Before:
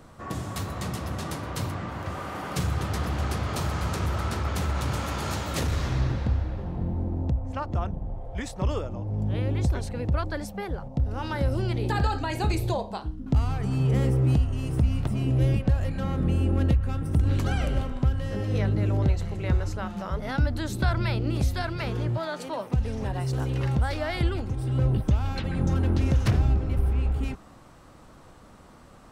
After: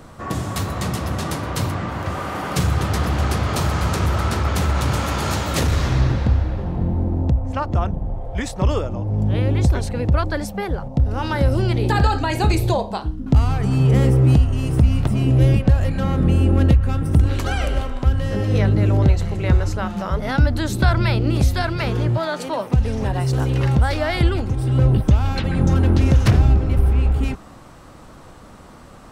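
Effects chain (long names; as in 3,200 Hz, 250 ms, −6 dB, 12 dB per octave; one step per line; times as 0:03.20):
0:17.26–0:18.07: parametric band 150 Hz −11 dB 1.7 octaves
level +8 dB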